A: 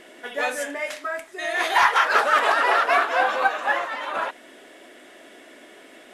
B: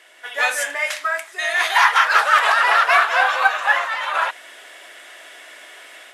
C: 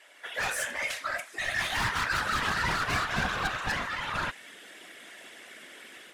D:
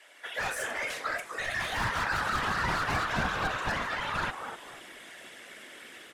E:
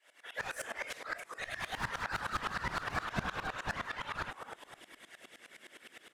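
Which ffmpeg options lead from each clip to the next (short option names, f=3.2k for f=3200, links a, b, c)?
-af "highpass=960,dynaudnorm=f=210:g=3:m=9dB"
-af "asoftclip=type=tanh:threshold=-19dB,asubboost=boost=9.5:cutoff=240,afftfilt=real='hypot(re,im)*cos(2*PI*random(0))':imag='hypot(re,im)*sin(2*PI*random(1))':win_size=512:overlap=0.75"
-filter_complex "[0:a]acrossover=split=280|1600[a][b][c];[b]asplit=5[d][e][f][g][h];[e]adelay=250,afreqshift=-110,volume=-4.5dB[i];[f]adelay=500,afreqshift=-220,volume=-15dB[j];[g]adelay=750,afreqshift=-330,volume=-25.4dB[k];[h]adelay=1000,afreqshift=-440,volume=-35.9dB[l];[d][i][j][k][l]amix=inputs=5:normalize=0[m];[c]alimiter=level_in=5.5dB:limit=-24dB:level=0:latency=1:release=40,volume=-5.5dB[n];[a][m][n]amix=inputs=3:normalize=0"
-af "aeval=exprs='val(0)*pow(10,-20*if(lt(mod(-9.7*n/s,1),2*abs(-9.7)/1000),1-mod(-9.7*n/s,1)/(2*abs(-9.7)/1000),(mod(-9.7*n/s,1)-2*abs(-9.7)/1000)/(1-2*abs(-9.7)/1000))/20)':c=same,volume=-1dB"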